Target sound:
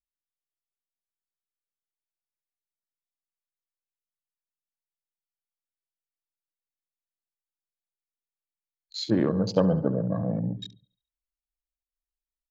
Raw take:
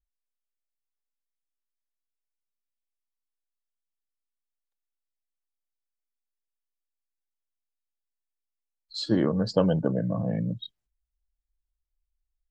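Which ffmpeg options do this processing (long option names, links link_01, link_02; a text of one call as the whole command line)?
ffmpeg -i in.wav -af "aecho=1:1:70|140|210|280|350|420:0.237|0.128|0.0691|0.0373|0.0202|0.0109,afwtdn=0.01" out.wav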